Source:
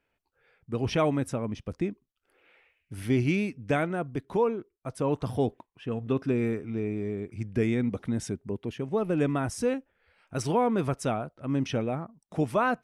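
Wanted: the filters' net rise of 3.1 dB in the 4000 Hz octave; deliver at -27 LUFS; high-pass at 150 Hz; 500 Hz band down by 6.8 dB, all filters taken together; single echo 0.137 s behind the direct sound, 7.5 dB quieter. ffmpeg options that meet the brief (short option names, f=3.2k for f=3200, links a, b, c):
-af "highpass=150,equalizer=f=500:t=o:g=-8.5,equalizer=f=4k:t=o:g=4.5,aecho=1:1:137:0.422,volume=5.5dB"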